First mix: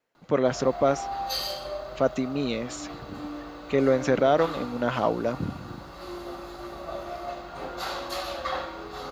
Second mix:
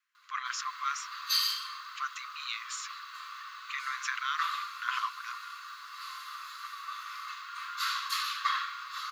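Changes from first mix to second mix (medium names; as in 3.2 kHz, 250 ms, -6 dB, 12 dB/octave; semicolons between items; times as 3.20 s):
background +3.0 dB; master: add brick-wall FIR high-pass 1 kHz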